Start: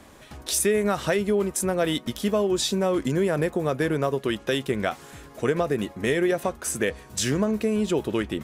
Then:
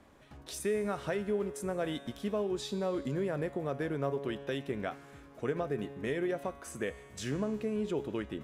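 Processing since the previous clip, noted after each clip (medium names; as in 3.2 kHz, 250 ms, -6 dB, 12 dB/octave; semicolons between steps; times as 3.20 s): treble shelf 3.8 kHz -10 dB; feedback comb 140 Hz, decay 1.9 s, mix 70%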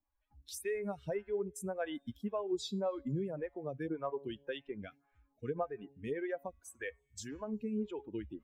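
expander on every frequency bin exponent 2; lamp-driven phase shifter 1.8 Hz; trim +3.5 dB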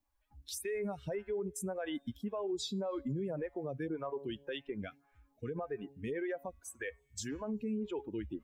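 peak limiter -34.5 dBFS, peak gain reduction 11 dB; trim +4.5 dB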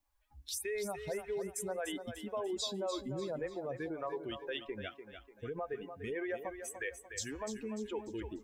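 peaking EQ 190 Hz -9 dB 1.8 oct; on a send: thinning echo 295 ms, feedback 40%, high-pass 190 Hz, level -8.5 dB; on the sum: trim +2.5 dB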